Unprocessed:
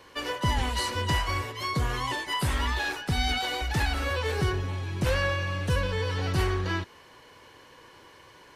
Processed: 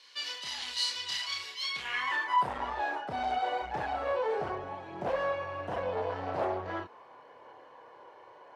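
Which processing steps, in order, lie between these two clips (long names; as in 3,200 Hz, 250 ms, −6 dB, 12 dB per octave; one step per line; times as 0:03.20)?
multi-voice chorus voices 2, 0.4 Hz, delay 30 ms, depth 2.4 ms
sine wavefolder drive 10 dB, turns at −14 dBFS
band-pass filter sweep 4,300 Hz → 710 Hz, 0:01.61–0:02.52
level −3.5 dB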